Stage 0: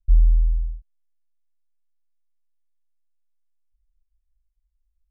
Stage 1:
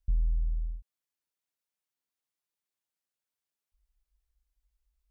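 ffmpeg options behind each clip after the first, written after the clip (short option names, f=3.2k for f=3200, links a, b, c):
-af "highpass=f=85:p=1,acompressor=threshold=-36dB:ratio=2,volume=4dB"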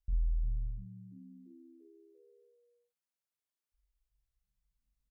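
-filter_complex "[0:a]asplit=2[a][b];[b]adelay=45,volume=-3dB[c];[a][c]amix=inputs=2:normalize=0,asplit=7[d][e][f][g][h][i][j];[e]adelay=343,afreqshift=73,volume=-19dB[k];[f]adelay=686,afreqshift=146,volume=-22.9dB[l];[g]adelay=1029,afreqshift=219,volume=-26.8dB[m];[h]adelay=1372,afreqshift=292,volume=-30.6dB[n];[i]adelay=1715,afreqshift=365,volume=-34.5dB[o];[j]adelay=2058,afreqshift=438,volume=-38.4dB[p];[d][k][l][m][n][o][p]amix=inputs=7:normalize=0,volume=-7dB"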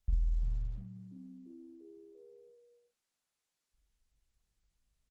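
-filter_complex "[0:a]asplit=2[a][b];[b]adelay=13,volume=-6dB[c];[a][c]amix=inputs=2:normalize=0,volume=6dB" -ar 48000 -c:a libopus -b:a 16k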